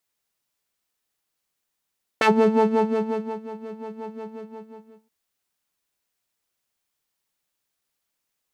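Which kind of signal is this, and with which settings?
subtractive patch with filter wobble A4, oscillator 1 saw, oscillator 2 square, interval +12 semitones, oscillator 2 level −10 dB, sub −7.5 dB, filter bandpass, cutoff 170 Hz, Q 1.2, filter envelope 3 octaves, filter decay 0.11 s, filter sustain 15%, attack 3.1 ms, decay 1.19 s, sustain −19.5 dB, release 0.87 s, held 2.01 s, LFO 5.6 Hz, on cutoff 1.3 octaves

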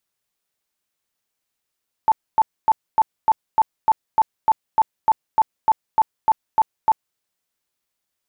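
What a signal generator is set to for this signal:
tone bursts 880 Hz, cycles 34, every 0.30 s, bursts 17, −10.5 dBFS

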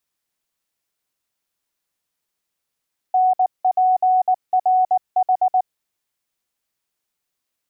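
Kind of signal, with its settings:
Morse code "NPRH" 19 words per minute 742 Hz −12.5 dBFS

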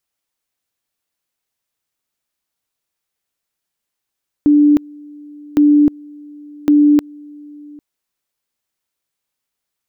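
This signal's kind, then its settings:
tone at two levels in turn 294 Hz −6.5 dBFS, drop 26.5 dB, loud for 0.31 s, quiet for 0.80 s, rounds 3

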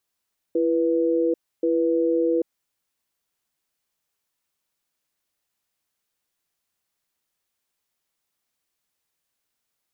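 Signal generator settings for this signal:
tone pair in a cadence 335 Hz, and 490 Hz, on 0.79 s, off 0.29 s, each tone −21 dBFS 1.92 s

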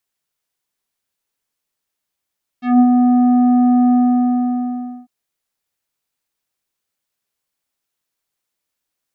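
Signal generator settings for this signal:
subtractive voice square B3 24 dB per octave, low-pass 840 Hz, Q 0.73, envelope 2.5 octaves, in 0.13 s, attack 173 ms, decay 0.07 s, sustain −3.5 dB, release 1.15 s, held 1.30 s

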